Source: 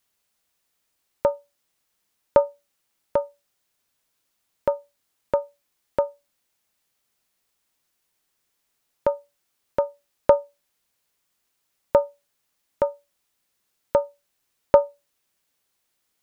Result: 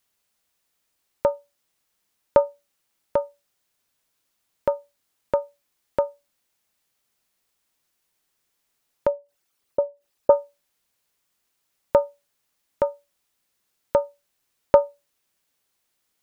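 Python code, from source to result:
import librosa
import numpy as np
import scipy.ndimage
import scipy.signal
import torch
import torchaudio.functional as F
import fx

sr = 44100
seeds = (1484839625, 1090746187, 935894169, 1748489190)

y = fx.envelope_sharpen(x, sr, power=2.0, at=(9.07, 10.3))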